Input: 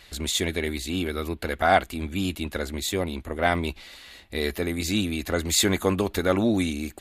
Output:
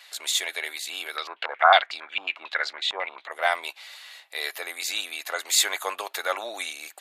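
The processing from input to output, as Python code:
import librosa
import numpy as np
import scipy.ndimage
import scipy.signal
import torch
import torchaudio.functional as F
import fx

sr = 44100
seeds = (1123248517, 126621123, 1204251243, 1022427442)

y = scipy.signal.sosfilt(scipy.signal.butter(4, 680.0, 'highpass', fs=sr, output='sos'), x)
y = fx.filter_held_lowpass(y, sr, hz=11.0, low_hz=940.0, high_hz=4800.0, at=(1.16, 3.3), fade=0.02)
y = y * 10.0 ** (1.5 / 20.0)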